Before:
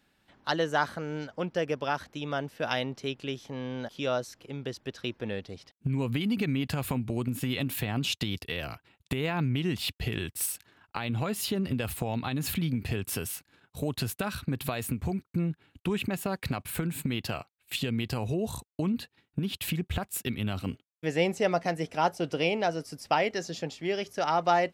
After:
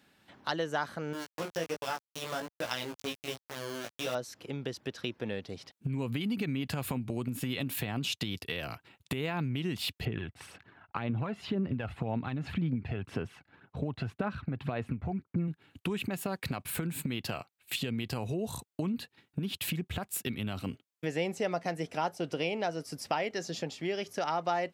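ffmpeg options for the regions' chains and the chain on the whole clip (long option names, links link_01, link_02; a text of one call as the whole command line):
ffmpeg -i in.wav -filter_complex "[0:a]asettb=1/sr,asplit=3[link_01][link_02][link_03];[link_01]atrim=end=1.134[link_04];[link_02]atrim=start=1.13:end=4.15,asetpts=PTS-STARTPTS,afade=type=in:duration=0.004:curve=qsin,afade=type=out:start_time=3.016:duration=0.004:curve=qsin,lowpass=frequency=6000:width_type=q:width=2.9,aeval=exprs='val(0)*gte(abs(val(0)),0.0282)':channel_layout=same,flanger=delay=16:depth=2.9:speed=1.3[link_05];[link_03]atrim=start=4.146[link_06];[link_04][link_05]acrossfade=duration=0.004:curve1=hsin:curve2=qsin[link_07];[link_07][link_06]acrossfade=duration=0.004:curve1=qsin:curve2=hsin,asettb=1/sr,asplit=3[link_08][link_09][link_10];[link_08]atrim=end=10.054[link_11];[link_09]atrim=start=10.05:end=15.48,asetpts=PTS-STARTPTS,afade=type=in:duration=0.004:curve=qsin,afade=type=out:start_time=5.426:duration=0.004:curve=qsin,lowpass=2000,aphaser=in_gain=1:out_gain=1:delay=1.5:decay=0.42:speed=1.9:type=sinusoidal[link_12];[link_10]atrim=start=15.476[link_13];[link_11][link_12]acrossfade=duration=0.004:curve1=hsin:curve2=qsin[link_14];[link_14][link_13]acrossfade=duration=0.004:curve1=qsin:curve2=hsin,acompressor=threshold=-40dB:ratio=2,highpass=91,volume=4dB" out.wav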